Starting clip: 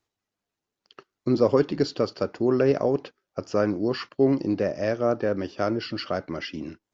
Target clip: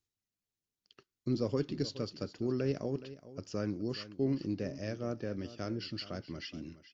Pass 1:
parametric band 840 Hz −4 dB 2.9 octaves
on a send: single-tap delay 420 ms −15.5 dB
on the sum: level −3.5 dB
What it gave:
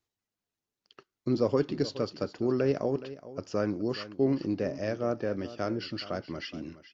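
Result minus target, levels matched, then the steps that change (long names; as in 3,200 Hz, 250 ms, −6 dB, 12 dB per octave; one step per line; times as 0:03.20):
1,000 Hz band +4.0 dB
change: parametric band 840 Hz −15 dB 2.9 octaves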